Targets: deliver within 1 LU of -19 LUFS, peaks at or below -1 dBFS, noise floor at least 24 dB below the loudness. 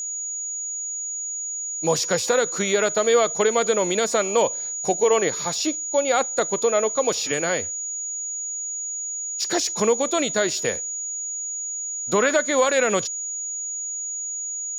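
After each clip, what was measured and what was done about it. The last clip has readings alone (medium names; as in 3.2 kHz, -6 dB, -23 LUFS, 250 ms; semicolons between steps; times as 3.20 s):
steady tone 6.8 kHz; tone level -27 dBFS; loudness -22.5 LUFS; peak level -8.5 dBFS; loudness target -19.0 LUFS
-> band-stop 6.8 kHz, Q 30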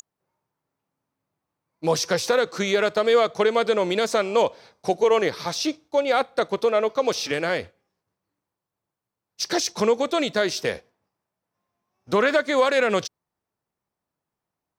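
steady tone not found; loudness -22.5 LUFS; peak level -9.5 dBFS; loudness target -19.0 LUFS
-> trim +3.5 dB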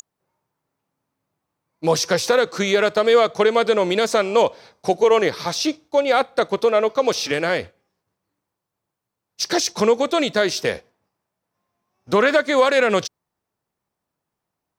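loudness -19.0 LUFS; peak level -6.0 dBFS; noise floor -82 dBFS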